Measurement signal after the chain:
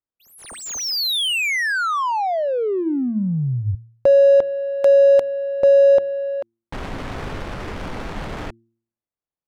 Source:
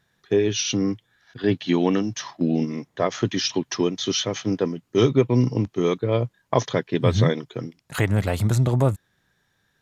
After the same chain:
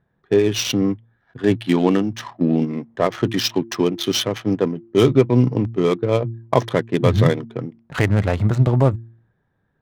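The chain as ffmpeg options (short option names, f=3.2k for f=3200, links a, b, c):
-af "adynamicsmooth=sensitivity=4:basefreq=1.1k,bandreject=f=114.4:t=h:w=4,bandreject=f=228.8:t=h:w=4,bandreject=f=343.2:t=h:w=4,volume=4dB"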